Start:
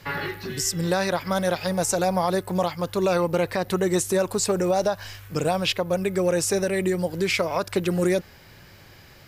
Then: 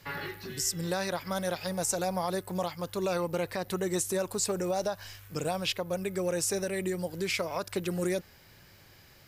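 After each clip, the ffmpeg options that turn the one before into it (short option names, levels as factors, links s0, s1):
-af "highshelf=f=5000:g=6,volume=0.376"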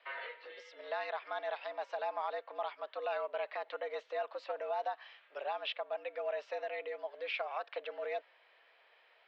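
-af "highpass=f=390:t=q:w=0.5412,highpass=f=390:t=q:w=1.307,lowpass=f=3400:t=q:w=0.5176,lowpass=f=3400:t=q:w=0.7071,lowpass=f=3400:t=q:w=1.932,afreqshift=110,volume=0.562"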